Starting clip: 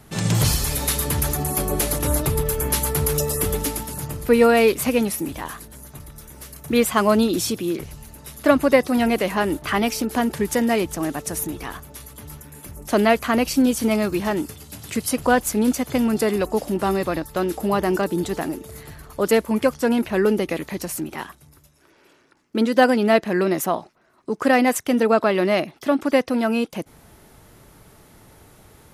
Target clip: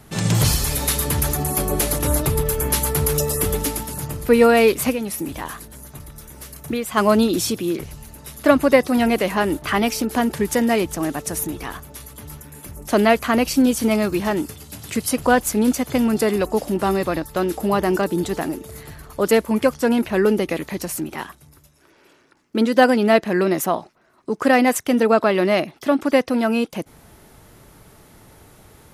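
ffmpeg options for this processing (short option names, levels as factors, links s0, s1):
-filter_complex "[0:a]asplit=3[s0][s1][s2];[s0]afade=t=out:st=4.92:d=0.02[s3];[s1]acompressor=threshold=0.0708:ratio=6,afade=t=in:st=4.92:d=0.02,afade=t=out:st=6.96:d=0.02[s4];[s2]afade=t=in:st=6.96:d=0.02[s5];[s3][s4][s5]amix=inputs=3:normalize=0,volume=1.19"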